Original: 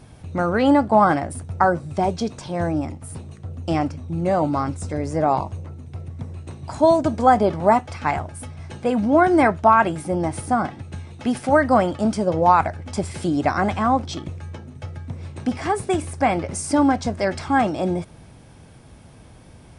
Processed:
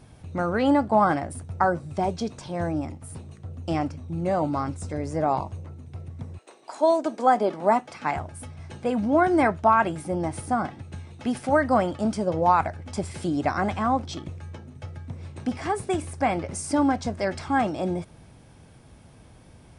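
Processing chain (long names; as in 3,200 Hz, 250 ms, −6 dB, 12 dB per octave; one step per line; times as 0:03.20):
0:06.37–0:08.14: high-pass filter 450 Hz → 140 Hz 24 dB per octave
level −4.5 dB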